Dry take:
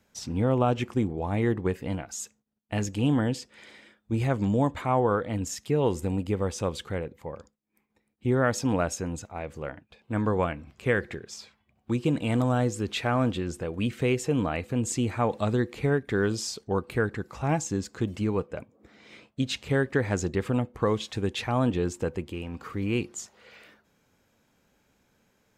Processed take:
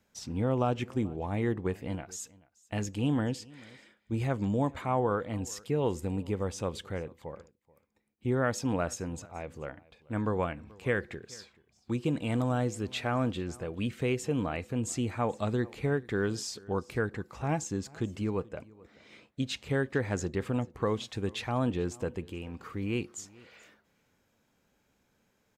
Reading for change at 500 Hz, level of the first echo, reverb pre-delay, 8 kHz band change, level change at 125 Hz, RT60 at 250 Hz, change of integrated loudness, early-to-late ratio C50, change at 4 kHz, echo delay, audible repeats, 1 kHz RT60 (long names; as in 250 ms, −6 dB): −4.5 dB, −23.5 dB, no reverb audible, −4.5 dB, −4.5 dB, no reverb audible, −4.5 dB, no reverb audible, −4.5 dB, 433 ms, 1, no reverb audible